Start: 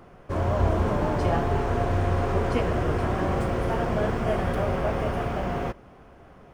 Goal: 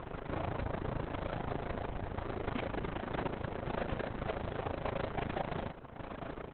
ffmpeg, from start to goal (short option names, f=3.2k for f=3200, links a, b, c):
-af "lowpass=f=5.8k:w=0.5412,lowpass=f=5.8k:w=1.3066,acompressor=threshold=-42dB:ratio=2.5,equalizer=f=3.7k:t=o:w=0.34:g=2,aecho=1:1:7.4:0.53,acontrast=74,asoftclip=type=tanh:threshold=-33dB,tremolo=f=27:d=0.75,volume=4.5dB" -ar 48000 -c:a libopus -b:a 6k